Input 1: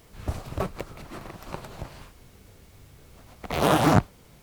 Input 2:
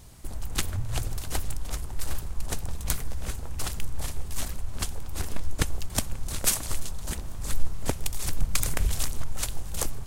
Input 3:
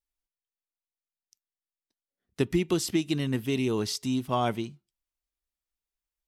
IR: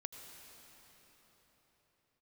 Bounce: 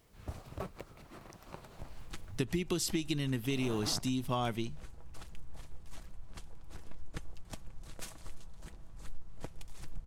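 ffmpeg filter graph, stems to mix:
-filter_complex "[0:a]volume=-12dB[link_01];[1:a]aemphasis=mode=reproduction:type=50kf,aecho=1:1:6.1:0.33,adelay=1550,volume=-16dB[link_02];[2:a]equalizer=frequency=540:width=0.35:gain=-5.5,volume=3dB,asplit=2[link_03][link_04];[link_04]apad=whole_len=195191[link_05];[link_01][link_05]sidechaincompress=threshold=-33dB:ratio=8:attack=8.5:release=194[link_06];[link_06][link_02][link_03]amix=inputs=3:normalize=0,acompressor=threshold=-30dB:ratio=4"

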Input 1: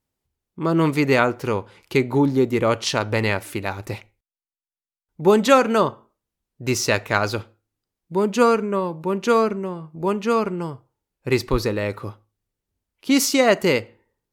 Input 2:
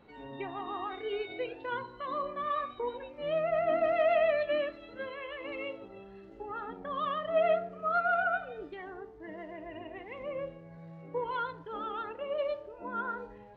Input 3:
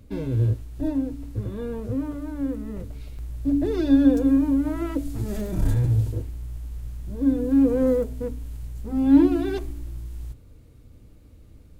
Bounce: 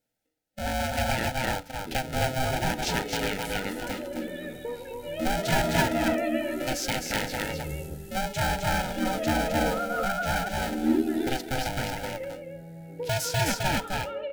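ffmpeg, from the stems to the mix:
ffmpeg -i stem1.wav -i stem2.wav -i stem3.wav -filter_complex "[0:a]highpass=77,aeval=exprs='val(0)*sgn(sin(2*PI*390*n/s))':channel_layout=same,volume=-1dB,asplit=3[link_01][link_02][link_03];[link_02]volume=-11dB[link_04];[1:a]bandreject=frequency=620:width=12,adelay=1850,volume=3dB,asplit=2[link_05][link_06];[link_06]volume=-7.5dB[link_07];[2:a]highpass=frequency=260:poles=1,highshelf=frequency=4900:gain=12,aeval=exprs='val(0)*sin(2*PI*39*n/s)':channel_layout=same,adelay=1750,volume=-2.5dB,asplit=2[link_08][link_09];[link_09]volume=-8dB[link_10];[link_03]apad=whole_len=597540[link_11];[link_08][link_11]sidechaincompress=threshold=-20dB:ratio=8:attack=16:release=1120[link_12];[link_01][link_05]amix=inputs=2:normalize=0,asuperstop=centerf=1100:order=4:qfactor=2.8,acompressor=threshold=-33dB:ratio=2,volume=0dB[link_13];[link_04][link_07][link_10]amix=inputs=3:normalize=0,aecho=0:1:260:1[link_14];[link_12][link_13][link_14]amix=inputs=3:normalize=0,asuperstop=centerf=1100:order=20:qfactor=3.8" out.wav

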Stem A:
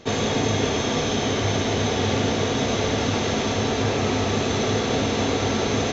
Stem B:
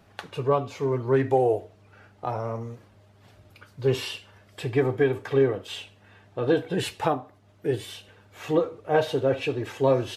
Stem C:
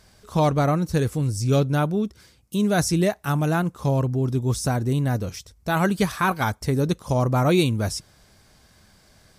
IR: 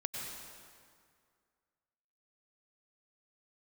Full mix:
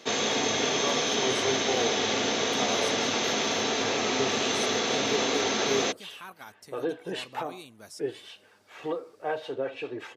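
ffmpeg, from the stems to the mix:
-filter_complex "[0:a]volume=-2dB[link_01];[1:a]aemphasis=mode=reproduction:type=75fm,alimiter=limit=-15dB:level=0:latency=1:release=336,acrossover=split=620[link_02][link_03];[link_02]aeval=exprs='val(0)*(1-0.5/2+0.5/2*cos(2*PI*5.2*n/s))':channel_layout=same[link_04];[link_03]aeval=exprs='val(0)*(1-0.5/2-0.5/2*cos(2*PI*5.2*n/s))':channel_layout=same[link_05];[link_04][link_05]amix=inputs=2:normalize=0,adelay=350,volume=-0.5dB[link_06];[2:a]alimiter=limit=-18.5dB:level=0:latency=1:release=451,volume=-14dB[link_07];[link_01][link_06][link_07]amix=inputs=3:normalize=0,highpass=250,tiltshelf=frequency=1300:gain=-3.5"

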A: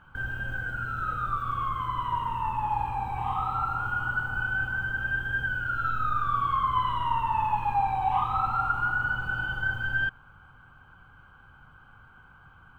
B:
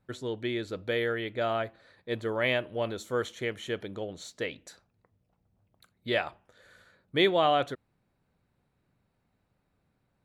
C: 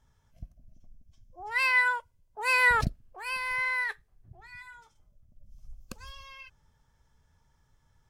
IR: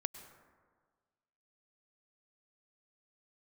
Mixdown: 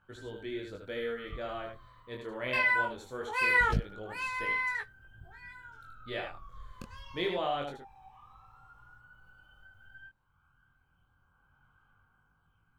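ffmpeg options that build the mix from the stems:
-filter_complex "[0:a]highshelf=frequency=6200:gain=11.5,acompressor=threshold=-43dB:ratio=2,aphaser=in_gain=1:out_gain=1:delay=1.9:decay=0.39:speed=0.17:type=sinusoidal,volume=-16dB[link_01];[1:a]volume=-6.5dB,asplit=2[link_02][link_03];[link_03]volume=-5.5dB[link_04];[2:a]bass=frequency=250:gain=3,treble=frequency=4000:gain=-7,adelay=900,volume=0dB,asplit=3[link_05][link_06][link_07];[link_05]atrim=end=1.85,asetpts=PTS-STARTPTS,afade=type=out:start_time=1.846:duration=0.004:curve=hsin[link_08];[link_06]atrim=start=1.85:end=2.53,asetpts=PTS-STARTPTS,volume=0[link_09];[link_07]atrim=start=2.53,asetpts=PTS-STARTPTS,afade=type=in:duration=0.004:curve=hsin[link_10];[link_08][link_09][link_10]concat=n=3:v=0:a=1[link_11];[link_04]aecho=0:1:77:1[link_12];[link_01][link_02][link_11][link_12]amix=inputs=4:normalize=0,flanger=delay=18.5:depth=5.5:speed=0.23"

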